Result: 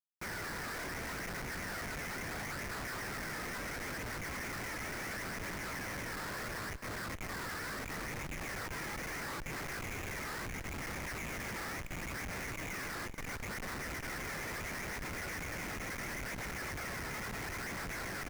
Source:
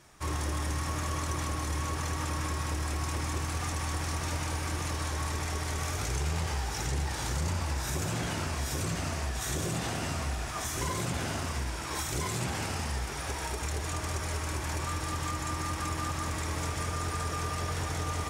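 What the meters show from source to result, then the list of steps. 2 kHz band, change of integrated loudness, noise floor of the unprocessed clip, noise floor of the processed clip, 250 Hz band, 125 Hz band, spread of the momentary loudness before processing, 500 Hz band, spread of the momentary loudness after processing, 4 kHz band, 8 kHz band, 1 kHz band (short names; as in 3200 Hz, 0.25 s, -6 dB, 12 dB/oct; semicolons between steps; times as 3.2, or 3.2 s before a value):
-0.5 dB, -7.0 dB, -36 dBFS, -42 dBFS, -7.0 dB, -14.0 dB, 2 LU, -6.0 dB, 1 LU, -8.0 dB, -9.5 dB, -8.0 dB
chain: rattling part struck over -36 dBFS, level -33 dBFS; steep low-pass 1900 Hz 48 dB/oct; spectral gate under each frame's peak -25 dB weak; HPF 1400 Hz 12 dB/oct; vocal rider 2 s; limiter -46 dBFS, peak gain reduction 7.5 dB; phaser 0.73 Hz, delay 2.5 ms, feedback 45%; Schmitt trigger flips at -56.5 dBFS; echo 0.441 s -15 dB; gain +15 dB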